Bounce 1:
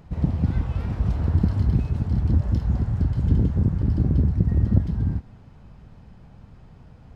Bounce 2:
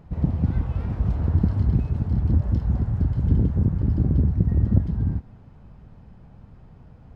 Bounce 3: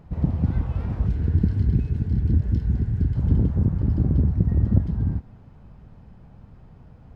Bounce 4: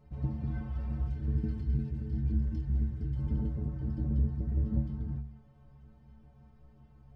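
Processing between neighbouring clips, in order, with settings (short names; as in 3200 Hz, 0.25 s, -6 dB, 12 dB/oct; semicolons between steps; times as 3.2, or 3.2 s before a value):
high shelf 2300 Hz -8.5 dB
spectral gain 1.06–3.15, 490–1400 Hz -10 dB
metallic resonator 65 Hz, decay 0.57 s, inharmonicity 0.03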